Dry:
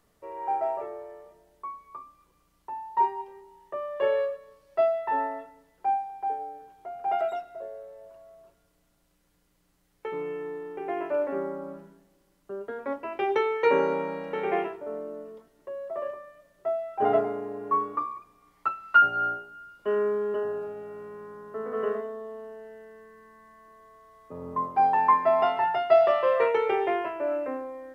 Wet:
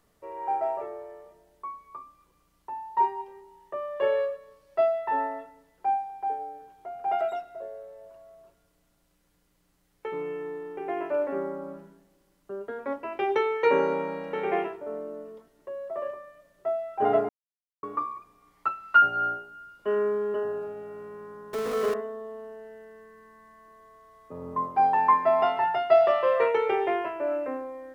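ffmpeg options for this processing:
ffmpeg -i in.wav -filter_complex "[0:a]asettb=1/sr,asplit=3[link_01][link_02][link_03];[link_01]atrim=end=21.534[link_04];[link_02]atrim=start=21.53:end=21.94,asetpts=PTS-STARTPTS,afade=type=in:duration=0.004:curve=qsin,afade=type=out:start_time=0.406:duration=0.004:curve=qsin,aeval=exprs='val(0)+0.5*0.0299*sgn(val(0))':channel_layout=same[link_05];[link_03]atrim=start=21.936[link_06];[link_04][link_05]acrossfade=duration=0.004:curve1=hsin:curve2=qsin[link_07];[link_07][link_06]acrossfade=duration=0.004:curve1=qsin:curve2=hsin,asplit=3[link_08][link_09][link_10];[link_08]atrim=end=17.29,asetpts=PTS-STARTPTS,afade=type=out:start_time=17.286:duration=0.004:curve=hsin[link_11];[link_09]atrim=start=17.29:end=17.83,asetpts=PTS-STARTPTS,volume=0[link_12];[link_10]atrim=start=17.83,asetpts=PTS-STARTPTS,afade=type=in:duration=0.004:curve=hsin[link_13];[link_11][link_12][link_13]concat=n=3:v=0:a=1" out.wav

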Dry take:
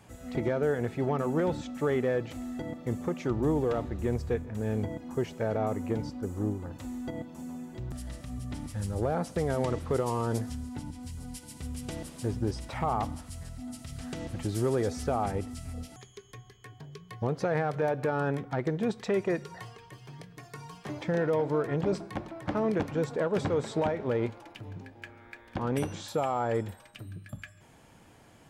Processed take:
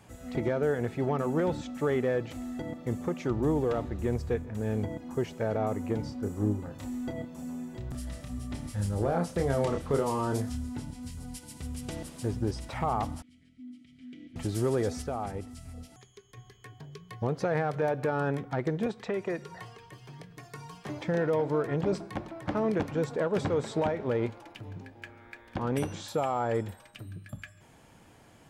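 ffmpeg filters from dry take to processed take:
ffmpeg -i in.wav -filter_complex "[0:a]asettb=1/sr,asplit=3[link_01][link_02][link_03];[link_01]atrim=end=6.014[link_04];[link_02]atrim=start=6.01:end=11.16,asetpts=PTS-STARTPTS,afade=type=in:duration=0.004:curve=qsin,afade=type=out:start_time=5.146:duration=0.004:curve=qsin,asplit=2[link_05][link_06];[link_06]adelay=29,volume=-5.5dB[link_07];[link_05][link_07]amix=inputs=2:normalize=0,atrim=end_sample=227115[link_08];[link_03]atrim=start=11.156[link_09];[link_04][link_08]acrossfade=duration=0.004:curve1=hsin:curve2=qsin[link_10];[link_10][link_09]acrossfade=duration=0.004:curve1=qsin:curve2=hsin,asettb=1/sr,asplit=3[link_11][link_12][link_13];[link_11]atrim=end=13.224[link_14];[link_12]atrim=start=13.22:end=14.36,asetpts=PTS-STARTPTS,afade=type=in:duration=0.004:curve=qsin,afade=type=out:start_time=1.136:duration=0.004:curve=qsin,asplit=3[link_15][link_16][link_17];[link_15]bandpass=frequency=270:width_type=q:width=8,volume=0dB[link_18];[link_16]bandpass=frequency=2290:width_type=q:width=8,volume=-6dB[link_19];[link_17]bandpass=frequency=3010:width_type=q:width=8,volume=-9dB[link_20];[link_18][link_19][link_20]amix=inputs=3:normalize=0[link_21];[link_13]atrim=start=14.356[link_22];[link_14][link_21]acrossfade=duration=0.004:curve1=hsin:curve2=qsin[link_23];[link_23][link_22]acrossfade=duration=0.004:curve1=qsin:curve2=hsin,asettb=1/sr,asplit=3[link_24][link_25][link_26];[link_24]atrim=end=18.864[link_27];[link_25]atrim=start=18.86:end=20.31,asetpts=PTS-STARTPTS,afade=type=in:duration=0.004:curve=qsin,afade=type=out:start_time=1.446:duration=0.004:curve=qsin,acrossover=split=130|420|3600[link_28][link_29][link_30][link_31];[link_28]acompressor=threshold=-54dB:ratio=3[link_32];[link_29]acompressor=threshold=-36dB:ratio=3[link_33];[link_30]acompressor=threshold=-33dB:ratio=3[link_34];[link_31]acompressor=threshold=-58dB:ratio=3[link_35];[link_32][link_33][link_34][link_35]amix=inputs=4:normalize=0[link_36];[link_26]atrim=start=20.306[link_37];[link_27][link_36]acrossfade=duration=0.004:curve1=hsin:curve2=qsin[link_38];[link_38][link_37]acrossfade=duration=0.004:curve1=qsin:curve2=hsin,asplit=3[link_39][link_40][link_41];[link_39]atrim=end=15.022[link_42];[link_40]atrim=start=15.018:end=16.372,asetpts=PTS-STARTPTS,volume=-5dB[link_43];[link_41]atrim=start=16.368[link_44];[link_42][link_43]acrossfade=duration=0.004:curve1=hsin:curve2=hsin[link_45];[link_45][link_44]acrossfade=duration=0.004:curve1=hsin:curve2=hsin" out.wav

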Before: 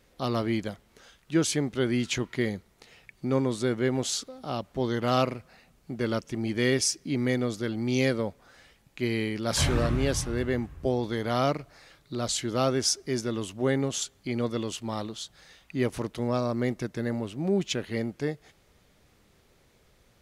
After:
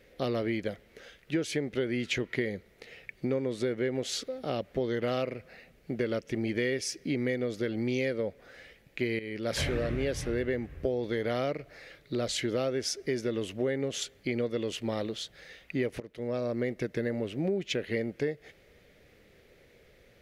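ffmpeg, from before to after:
ffmpeg -i in.wav -filter_complex "[0:a]asplit=3[link_01][link_02][link_03];[link_01]atrim=end=9.19,asetpts=PTS-STARTPTS,afade=type=out:start_time=9.186:duration=0.004:curve=hsin:silence=0.211349[link_04];[link_02]atrim=start=9.19:end=16,asetpts=PTS-STARTPTS,afade=type=in:duration=0.64:silence=0.211349,afade=type=out:start_time=6.806:duration=0.004:curve=hsin:silence=0.0944061[link_05];[link_03]atrim=start=16,asetpts=PTS-STARTPTS,afade=type=in:duration=0.95:silence=0.0944061[link_06];[link_04][link_05][link_06]concat=n=3:v=0:a=1,equalizer=frequency=500:width_type=o:width=1:gain=10,equalizer=frequency=1000:width_type=o:width=1:gain=-9,equalizer=frequency=2000:width_type=o:width=1:gain=9,equalizer=frequency=8000:width_type=o:width=1:gain=-6,acompressor=threshold=-27dB:ratio=6" out.wav

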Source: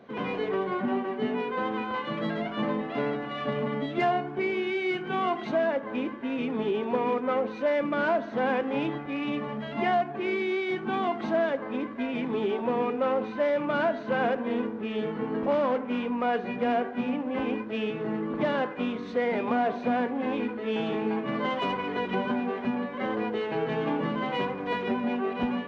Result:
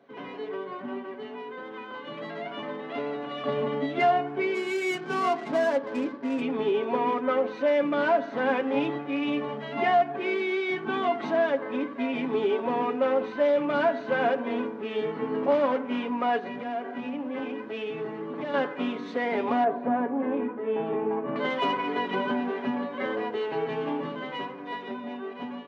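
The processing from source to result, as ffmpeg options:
ffmpeg -i in.wav -filter_complex "[0:a]asettb=1/sr,asplit=3[link_01][link_02][link_03];[link_01]atrim=end=1.144[link_04];[link_02]atrim=start=1.14:end=3.44,asetpts=PTS-STARTPTS,afade=type=in:duration=0.004:curve=qsin,afade=type=out:start_time=2.296:duration=0.004:curve=qsin,acrossover=split=120|600[link_05][link_06][link_07];[link_05]acompressor=threshold=-60dB:ratio=4[link_08];[link_06]acompressor=threshold=-35dB:ratio=4[link_09];[link_07]acompressor=threshold=-36dB:ratio=4[link_10];[link_08][link_09][link_10]amix=inputs=3:normalize=0[link_11];[link_03]atrim=start=3.436[link_12];[link_04][link_11]acrossfade=duration=0.004:curve1=hsin:curve2=qsin[link_13];[link_13][link_12]acrossfade=duration=0.004:curve1=qsin:curve2=hsin,asplit=3[link_14][link_15][link_16];[link_14]afade=type=out:start_time=4.54:duration=0.02[link_17];[link_15]adynamicsmooth=sensitivity=6.5:basefreq=920,afade=type=in:start_time=4.54:duration=0.02,afade=type=out:start_time=6.4:duration=0.02[link_18];[link_16]afade=type=in:start_time=6.4:duration=0.02[link_19];[link_17][link_18][link_19]amix=inputs=3:normalize=0,asettb=1/sr,asplit=3[link_20][link_21][link_22];[link_20]atrim=end=16.384[link_23];[link_21]atrim=start=16.38:end=18.54,asetpts=PTS-STARTPTS,afade=type=in:duration=0.004:curve=qsin,afade=type=out:start_time=2.156:duration=0.004:curve=qsin,acompressor=threshold=-31dB:ratio=4:attack=3.2:release=140:knee=1:detection=peak[link_24];[link_22]atrim=start=18.536[link_25];[link_23][link_24]acrossfade=duration=0.004:curve1=hsin:curve2=qsin[link_26];[link_26][link_25]acrossfade=duration=0.004:curve1=qsin:curve2=hsin,asettb=1/sr,asplit=3[link_27][link_28][link_29];[link_27]atrim=end=19.644[link_30];[link_28]atrim=start=19.64:end=21.36,asetpts=PTS-STARTPTS,afade=type=in:duration=0.004:curve=qsin,afade=type=out:start_time=1.716:duration=0.004:curve=qsin,lowpass=1300[link_31];[link_29]atrim=start=21.356[link_32];[link_30][link_31]acrossfade=duration=0.004:curve1=hsin:curve2=qsin[link_33];[link_33][link_32]acrossfade=duration=0.004:curve1=qsin:curve2=hsin,asettb=1/sr,asplit=3[link_34][link_35][link_36];[link_34]atrim=end=24.654[link_37];[link_35]atrim=start=24.65:end=25.27,asetpts=PTS-STARTPTS,afade=type=in:duration=0.004:curve=qsin,afade=type=out:start_time=0.616:duration=0.004:curve=qsin,aeval=exprs='val(0)+0.00141*sin(2*PI*3600*n/s)':channel_layout=same[link_38];[link_36]atrim=start=25.266[link_39];[link_37][link_38]acrossfade=duration=0.004:curve1=hsin:curve2=qsin[link_40];[link_40][link_39]acrossfade=duration=0.004:curve1=qsin:curve2=hsin,aecho=1:1:7.2:0.53,dynaudnorm=framelen=140:gausssize=31:maxgain=8.5dB,highpass=200,volume=-7.5dB" out.wav

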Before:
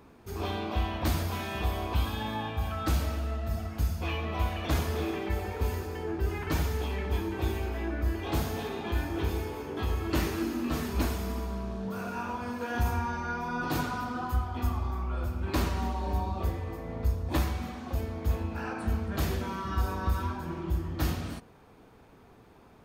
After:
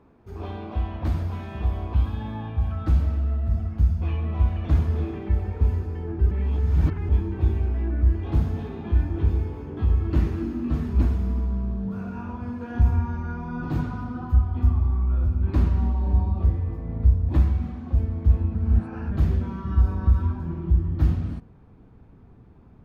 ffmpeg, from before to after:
ffmpeg -i in.wav -filter_complex "[0:a]asplit=5[link_01][link_02][link_03][link_04][link_05];[link_01]atrim=end=6.312[link_06];[link_02]atrim=start=6.308:end=7.092,asetpts=PTS-STARTPTS,areverse[link_07];[link_03]atrim=start=7.088:end=18.552[link_08];[link_04]atrim=start=18.548:end=19.112,asetpts=PTS-STARTPTS,areverse[link_09];[link_05]atrim=start=19.108[link_10];[link_06][link_07]acrossfade=duration=0.004:curve1=hsin:curve2=hsin[link_11];[link_11][link_08]acrossfade=duration=0.004:curve1=hsin:curve2=hsin[link_12];[link_12][link_09]acrossfade=duration=0.004:curve1=hsin:curve2=hsin[link_13];[link_13][link_10]acrossfade=duration=0.004:curve1=hsin:curve2=hsin,lowpass=frequency=1100:poles=1,asubboost=boost=3.5:cutoff=250,volume=-1dB" out.wav

